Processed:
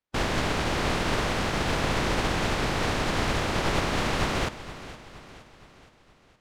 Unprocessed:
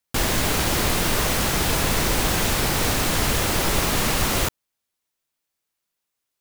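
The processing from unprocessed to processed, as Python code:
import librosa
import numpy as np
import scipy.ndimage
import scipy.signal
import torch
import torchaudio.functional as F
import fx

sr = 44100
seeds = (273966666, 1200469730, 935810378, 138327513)

y = fx.spec_flatten(x, sr, power=0.6)
y = fx.spacing_loss(y, sr, db_at_10k=23)
y = fx.echo_feedback(y, sr, ms=468, feedback_pct=50, wet_db=-15)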